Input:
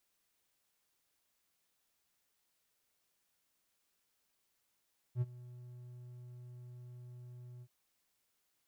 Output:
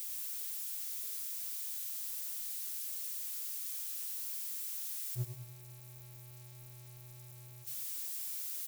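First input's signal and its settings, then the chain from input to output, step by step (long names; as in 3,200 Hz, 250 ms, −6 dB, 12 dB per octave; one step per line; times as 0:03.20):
note with an ADSR envelope triangle 123 Hz, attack 64 ms, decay 34 ms, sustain −20 dB, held 2.47 s, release 55 ms −26.5 dBFS
spike at every zero crossing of −38 dBFS
on a send: repeating echo 101 ms, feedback 50%, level −7.5 dB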